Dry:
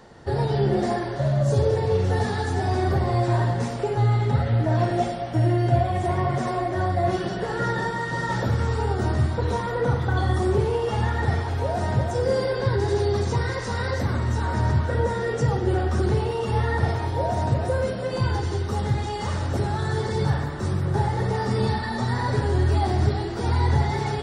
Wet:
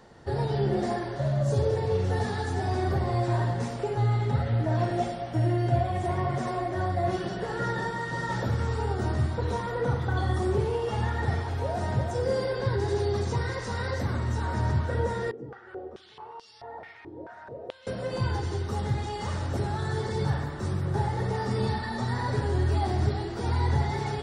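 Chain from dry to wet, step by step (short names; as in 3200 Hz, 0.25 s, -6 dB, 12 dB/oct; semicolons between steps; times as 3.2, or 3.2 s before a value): 15.31–17.87 stepped band-pass 4.6 Hz 320–4900 Hz; gain -4.5 dB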